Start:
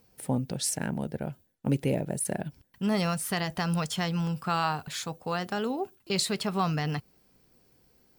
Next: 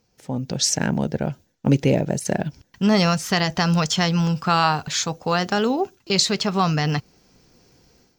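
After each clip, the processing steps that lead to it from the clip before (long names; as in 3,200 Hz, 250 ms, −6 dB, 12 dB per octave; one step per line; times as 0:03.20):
high shelf with overshoot 7,900 Hz −9 dB, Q 3
automatic gain control gain up to 12 dB
level −2 dB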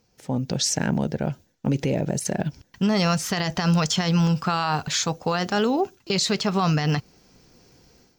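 brickwall limiter −14.5 dBFS, peak gain reduction 9.5 dB
level +1 dB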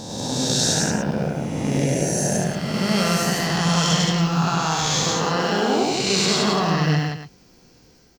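peak hold with a rise ahead of every peak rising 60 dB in 1.89 s
loudspeakers that aren't time-aligned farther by 34 metres −2 dB, 59 metres −3 dB, 97 metres −11 dB
level −4.5 dB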